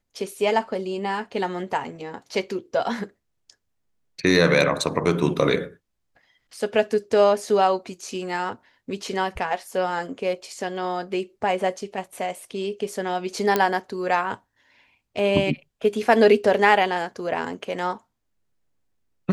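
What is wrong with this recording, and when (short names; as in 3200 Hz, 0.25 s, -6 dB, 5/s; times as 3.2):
13.56 pop -6 dBFS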